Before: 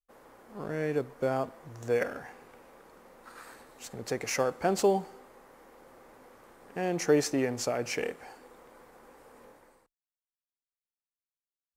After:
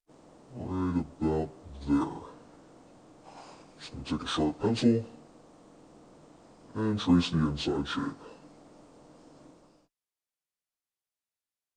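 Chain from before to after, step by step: pitch shift by moving bins -9 st; gain +2 dB

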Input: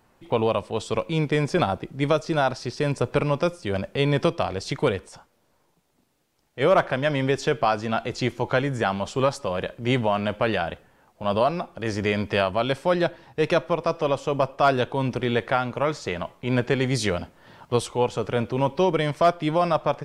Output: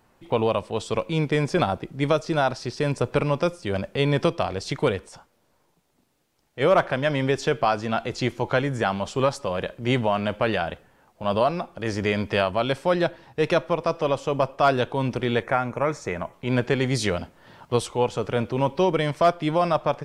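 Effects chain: spectral gain 15.42–16.33, 2600–5300 Hz -11 dB

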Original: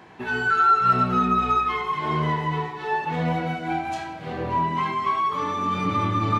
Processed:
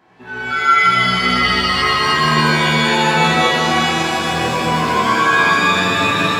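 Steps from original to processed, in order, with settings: AGC gain up to 11.5 dB; in parallel at +1 dB: limiter -11.5 dBFS, peak gain reduction 10 dB; on the sum: shimmer reverb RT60 3.2 s, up +7 st, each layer -2 dB, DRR -7.5 dB; gain -15.5 dB

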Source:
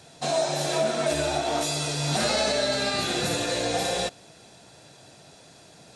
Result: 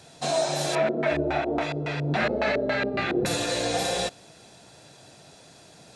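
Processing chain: 0.75–3.26 LFO low-pass square 3.6 Hz 400–2100 Hz

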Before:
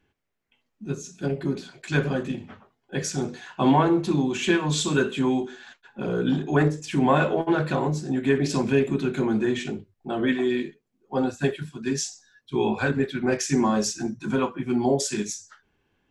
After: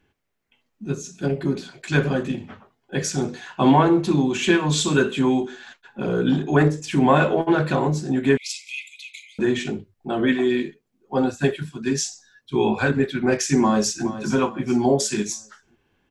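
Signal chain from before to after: 8.37–9.39 brick-wall FIR high-pass 2000 Hz; 13.62–14.07 echo throw 0.42 s, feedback 40%, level -13 dB; gain +3.5 dB

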